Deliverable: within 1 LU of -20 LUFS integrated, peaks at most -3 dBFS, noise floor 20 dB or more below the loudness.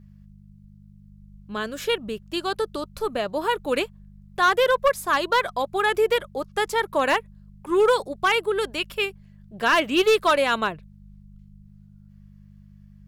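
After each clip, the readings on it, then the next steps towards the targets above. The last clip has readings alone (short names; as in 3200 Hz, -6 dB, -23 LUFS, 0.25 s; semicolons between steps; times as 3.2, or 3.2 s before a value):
clipped 0.4%; flat tops at -12.5 dBFS; hum 50 Hz; harmonics up to 200 Hz; hum level -47 dBFS; loudness -23.0 LUFS; peak -12.5 dBFS; loudness target -20.0 LUFS
-> clip repair -12.5 dBFS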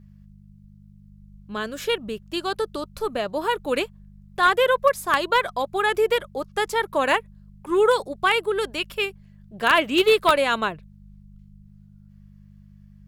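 clipped 0.0%; hum 50 Hz; harmonics up to 200 Hz; hum level -46 dBFS
-> de-hum 50 Hz, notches 4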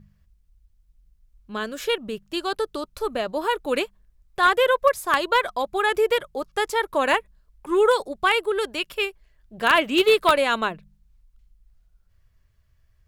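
hum none; loudness -22.5 LUFS; peak -3.5 dBFS; loudness target -20.0 LUFS
-> gain +2.5 dB; limiter -3 dBFS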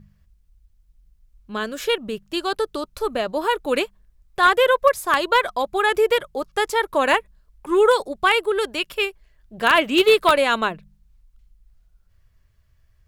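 loudness -20.0 LUFS; peak -3.0 dBFS; noise floor -61 dBFS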